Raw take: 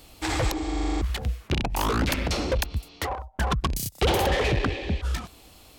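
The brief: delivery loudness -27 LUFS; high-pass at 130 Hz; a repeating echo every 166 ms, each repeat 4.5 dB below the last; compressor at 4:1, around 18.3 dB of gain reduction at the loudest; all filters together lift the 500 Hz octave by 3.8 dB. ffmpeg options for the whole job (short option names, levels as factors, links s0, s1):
-af "highpass=130,equalizer=f=500:t=o:g=4.5,acompressor=threshold=0.00891:ratio=4,aecho=1:1:166|332|498|664|830|996|1162|1328|1494:0.596|0.357|0.214|0.129|0.0772|0.0463|0.0278|0.0167|0.01,volume=4.47"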